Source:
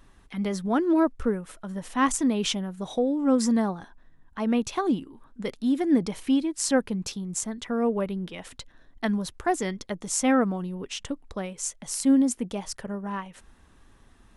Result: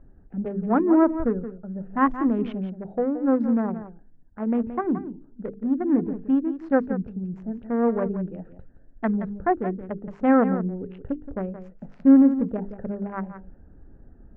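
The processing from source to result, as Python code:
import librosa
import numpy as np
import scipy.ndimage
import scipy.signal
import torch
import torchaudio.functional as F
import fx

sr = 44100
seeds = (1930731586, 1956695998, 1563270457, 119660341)

p1 = fx.wiener(x, sr, points=41)
p2 = scipy.signal.sosfilt(scipy.signal.butter(4, 1700.0, 'lowpass', fs=sr, output='sos'), p1)
p3 = fx.hum_notches(p2, sr, base_hz=50, count=9)
p4 = fx.rider(p3, sr, range_db=10, speed_s=2.0)
p5 = p3 + (p4 * 10.0 ** (1.0 / 20.0))
p6 = p5 + 10.0 ** (-11.5 / 20.0) * np.pad(p5, (int(173 * sr / 1000.0), 0))[:len(p5)]
y = p6 * 10.0 ** (-4.5 / 20.0)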